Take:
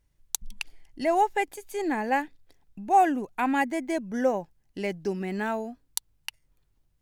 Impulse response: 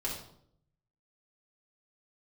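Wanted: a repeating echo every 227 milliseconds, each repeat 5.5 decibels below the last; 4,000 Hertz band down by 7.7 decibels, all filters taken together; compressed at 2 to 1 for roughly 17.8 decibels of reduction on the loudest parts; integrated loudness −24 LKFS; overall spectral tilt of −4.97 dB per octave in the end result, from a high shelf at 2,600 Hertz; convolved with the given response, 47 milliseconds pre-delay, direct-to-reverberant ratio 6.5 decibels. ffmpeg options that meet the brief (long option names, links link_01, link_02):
-filter_complex "[0:a]highshelf=frequency=2600:gain=-4,equalizer=frequency=4000:width_type=o:gain=-7.5,acompressor=threshold=-50dB:ratio=2,aecho=1:1:227|454|681|908|1135|1362|1589:0.531|0.281|0.149|0.079|0.0419|0.0222|0.0118,asplit=2[link_01][link_02];[1:a]atrim=start_sample=2205,adelay=47[link_03];[link_02][link_03]afir=irnorm=-1:irlink=0,volume=-10dB[link_04];[link_01][link_04]amix=inputs=2:normalize=0,volume=17.5dB"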